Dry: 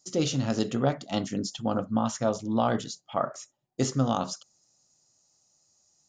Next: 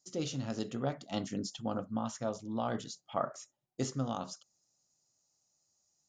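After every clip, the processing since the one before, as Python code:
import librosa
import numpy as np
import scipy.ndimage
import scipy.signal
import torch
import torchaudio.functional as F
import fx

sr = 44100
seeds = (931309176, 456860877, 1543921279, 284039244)

y = fx.rider(x, sr, range_db=10, speed_s=0.5)
y = y * librosa.db_to_amplitude(-8.5)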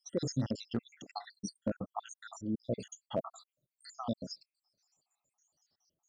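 y = fx.spec_dropout(x, sr, seeds[0], share_pct=81)
y = np.clip(y, -10.0 ** (-28.0 / 20.0), 10.0 ** (-28.0 / 20.0))
y = y * librosa.db_to_amplitude(5.5)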